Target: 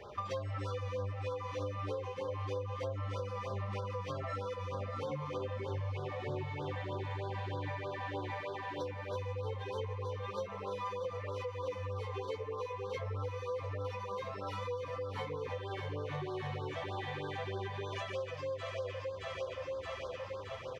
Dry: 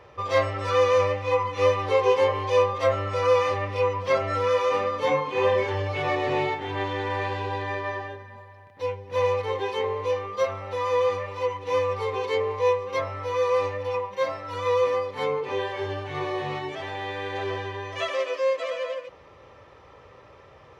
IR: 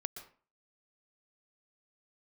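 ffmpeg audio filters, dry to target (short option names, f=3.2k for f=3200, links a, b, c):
-filter_complex "[0:a]asplit=2[a][b];[b]aecho=0:1:621|1242|1863|2484|3105|3726|4347:0.447|0.241|0.13|0.0703|0.038|0.0205|0.0111[c];[a][c]amix=inputs=2:normalize=0,acrossover=split=220[d][e];[e]acompressor=threshold=-36dB:ratio=6[f];[d][f]amix=inputs=2:normalize=0,flanger=delay=4.8:depth=8.7:regen=46:speed=0.28:shape=sinusoidal,acompressor=threshold=-40dB:ratio=6,afftfilt=real='re*(1-between(b*sr/1024,290*pow(2400/290,0.5+0.5*sin(2*PI*3.2*pts/sr))/1.41,290*pow(2400/290,0.5+0.5*sin(2*PI*3.2*pts/sr))*1.41))':imag='im*(1-between(b*sr/1024,290*pow(2400/290,0.5+0.5*sin(2*PI*3.2*pts/sr))/1.41,290*pow(2400/290,0.5+0.5*sin(2*PI*3.2*pts/sr))*1.41))':win_size=1024:overlap=0.75,volume=5.5dB"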